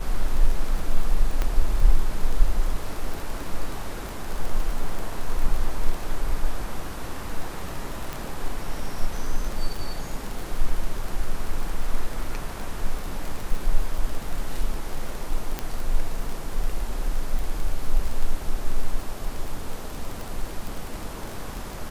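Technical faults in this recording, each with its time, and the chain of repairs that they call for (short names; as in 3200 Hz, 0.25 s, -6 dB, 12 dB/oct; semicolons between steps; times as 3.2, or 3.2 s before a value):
crackle 25/s -27 dBFS
1.42 pop -12 dBFS
4.09 pop
8.13 pop
15.59 pop -12 dBFS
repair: de-click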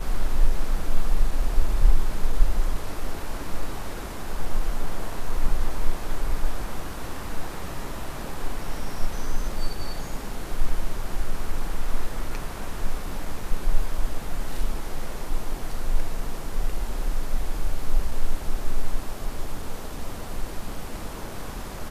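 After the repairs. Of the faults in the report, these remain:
4.09 pop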